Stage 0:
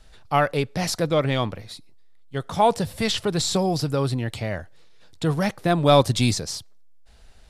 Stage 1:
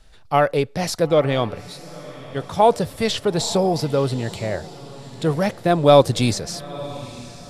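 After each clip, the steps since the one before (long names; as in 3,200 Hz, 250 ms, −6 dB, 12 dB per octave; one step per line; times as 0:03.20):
feedback delay with all-pass diffusion 931 ms, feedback 45%, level −15 dB
dynamic equaliser 500 Hz, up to +6 dB, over −33 dBFS, Q 1.1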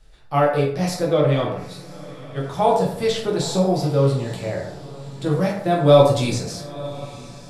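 dense smooth reverb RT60 0.67 s, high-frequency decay 0.55×, DRR −3 dB
level −6.5 dB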